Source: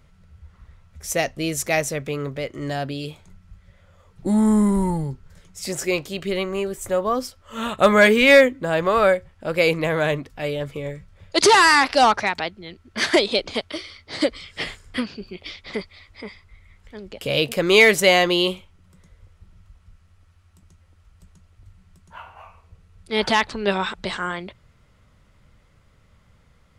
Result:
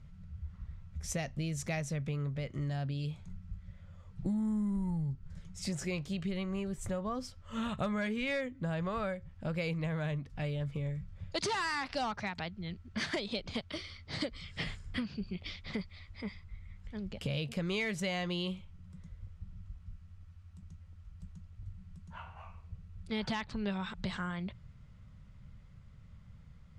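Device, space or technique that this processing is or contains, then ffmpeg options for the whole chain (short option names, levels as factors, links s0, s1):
jukebox: -af "lowpass=7900,lowshelf=f=240:t=q:w=1.5:g=10,acompressor=threshold=0.0562:ratio=5,volume=0.398"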